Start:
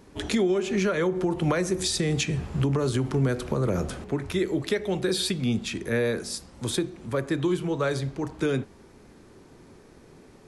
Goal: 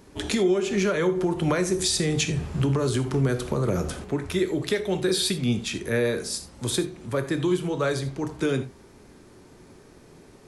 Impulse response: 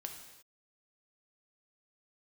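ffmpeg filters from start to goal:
-filter_complex "[0:a]asplit=2[a][b];[1:a]atrim=start_sample=2205,afade=t=out:st=0.14:d=0.01,atrim=end_sample=6615,highshelf=f=4.4k:g=6[c];[b][c]afir=irnorm=-1:irlink=0,volume=6dB[d];[a][d]amix=inputs=2:normalize=0,volume=-6.5dB"

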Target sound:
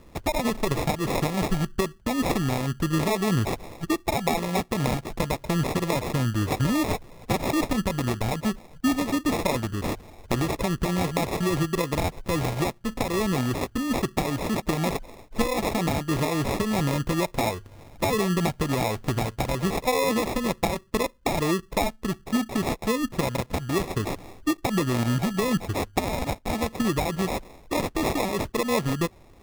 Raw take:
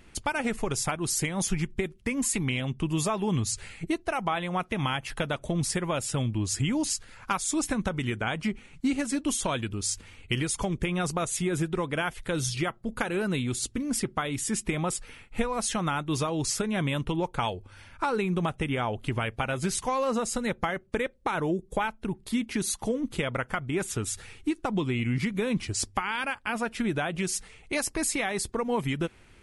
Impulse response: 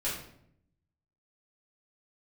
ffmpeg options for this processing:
-af "acrusher=samples=29:mix=1:aa=0.000001,volume=3.5dB"

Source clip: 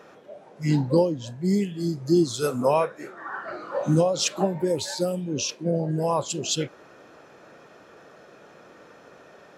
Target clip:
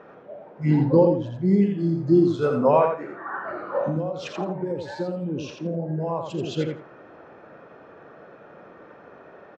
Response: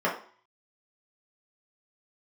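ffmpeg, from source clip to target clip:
-filter_complex "[0:a]lowpass=1.8k,asplit=3[a][b][c];[a]afade=t=out:st=3.83:d=0.02[d];[b]acompressor=threshold=-28dB:ratio=6,afade=t=in:st=3.83:d=0.02,afade=t=out:st=6.24:d=0.02[e];[c]afade=t=in:st=6.24:d=0.02[f];[d][e][f]amix=inputs=3:normalize=0,aecho=1:1:84|168|252:0.562|0.107|0.0203,volume=2.5dB"

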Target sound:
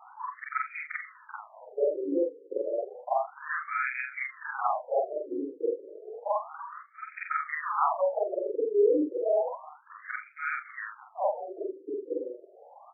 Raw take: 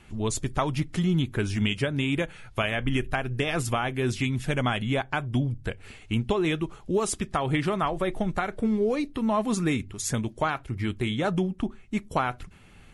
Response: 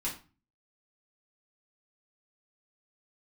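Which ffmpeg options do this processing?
-filter_complex "[0:a]afftfilt=real='re':imag='-im':win_size=4096:overlap=0.75,equalizer=f=125:t=o:w=1:g=-8,equalizer=f=250:t=o:w=1:g=5,equalizer=f=500:t=o:w=1:g=7,equalizer=f=1k:t=o:w=1:g=5,equalizer=f=2k:t=o:w=1:g=4,equalizer=f=4k:t=o:w=1:g=4,equalizer=f=8k:t=o:w=1:g=5,acompressor=threshold=-37dB:ratio=2.5,asplit=3[a][b][c];[b]adelay=111,afreqshift=-63,volume=-24dB[d];[c]adelay=222,afreqshift=-126,volume=-32.9dB[e];[a][d][e]amix=inputs=3:normalize=0,acontrast=79,afftfilt=real='re*between(b*sr/1024,370*pow(1800/370,0.5+0.5*sin(2*PI*0.31*pts/sr))/1.41,370*pow(1800/370,0.5+0.5*sin(2*PI*0.31*pts/sr))*1.41)':imag='im*between(b*sr/1024,370*pow(1800/370,0.5+0.5*sin(2*PI*0.31*pts/sr))/1.41,370*pow(1800/370,0.5+0.5*sin(2*PI*0.31*pts/sr))*1.41)':win_size=1024:overlap=0.75,volume=5dB"

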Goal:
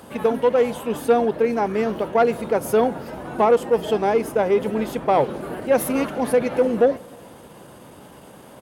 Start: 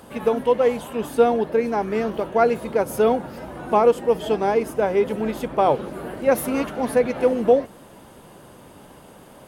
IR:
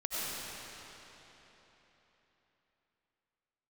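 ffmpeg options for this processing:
-filter_complex "[0:a]asplit=2[a][b];[1:a]atrim=start_sample=2205,asetrate=70560,aresample=44100,adelay=34[c];[b][c]afir=irnorm=-1:irlink=0,volume=-27.5dB[d];[a][d]amix=inputs=2:normalize=0,atempo=1.1,acontrast=89,highpass=59,volume=-5.5dB"

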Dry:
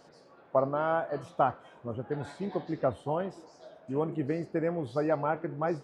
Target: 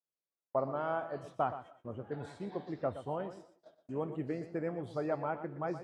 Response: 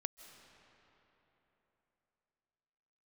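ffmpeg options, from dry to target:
-filter_complex "[0:a]agate=range=-43dB:threshold=-48dB:ratio=16:detection=peak,asplit=2[a][b];[1:a]atrim=start_sample=2205,afade=t=out:st=0.24:d=0.01,atrim=end_sample=11025,adelay=120[c];[b][c]afir=irnorm=-1:irlink=0,volume=-9.5dB[d];[a][d]amix=inputs=2:normalize=0,volume=-6.5dB"

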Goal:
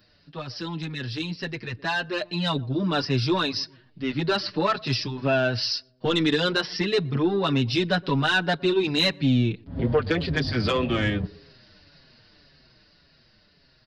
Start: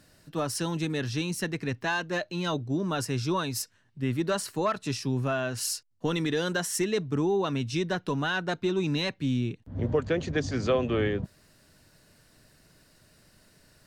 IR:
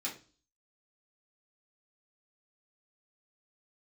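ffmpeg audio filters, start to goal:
-filter_complex "[0:a]aresample=11025,aresample=44100,asoftclip=type=tanh:threshold=-17.5dB,aemphasis=mode=production:type=75kf,asplit=2[a][b];[b]adelay=119,lowpass=f=990:p=1,volume=-22.5dB,asplit=2[c][d];[d]adelay=119,lowpass=f=990:p=1,volume=0.53,asplit=2[e][f];[f]adelay=119,lowpass=f=990:p=1,volume=0.53,asplit=2[g][h];[h]adelay=119,lowpass=f=990:p=1,volume=0.53[i];[c][e][g][i]amix=inputs=4:normalize=0[j];[a][j]amix=inputs=2:normalize=0,dynaudnorm=f=210:g=21:m=8dB,asplit=2[k][l];[l]adelay=6.1,afreqshift=-1.8[m];[k][m]amix=inputs=2:normalize=1"

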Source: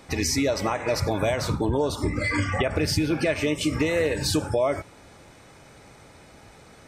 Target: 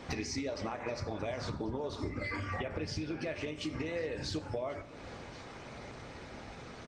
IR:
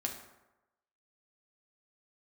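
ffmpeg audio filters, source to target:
-filter_complex "[0:a]lowpass=f=6.1k:w=0.5412,lowpass=f=6.1k:w=1.3066,acompressor=threshold=-38dB:ratio=8,asplit=2[a][b];[b]adelay=19,volume=-13.5dB[c];[a][c]amix=inputs=2:normalize=0,aecho=1:1:1091|2182:0.1|0.024,asplit=2[d][e];[1:a]atrim=start_sample=2205,lowshelf=f=160:g=-4[f];[e][f]afir=irnorm=-1:irlink=0,volume=-3dB[g];[d][g]amix=inputs=2:normalize=0,aeval=exprs='0.0631*(cos(1*acos(clip(val(0)/0.0631,-1,1)))-cos(1*PI/2))+0.00158*(cos(3*acos(clip(val(0)/0.0631,-1,1)))-cos(3*PI/2))':c=same" -ar 48000 -c:a libopus -b:a 20k

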